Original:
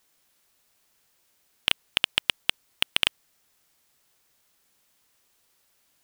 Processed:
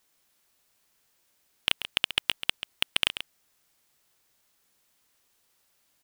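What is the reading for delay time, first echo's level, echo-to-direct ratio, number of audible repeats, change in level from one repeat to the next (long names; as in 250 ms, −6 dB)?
136 ms, −11.0 dB, −11.0 dB, 1, repeats not evenly spaced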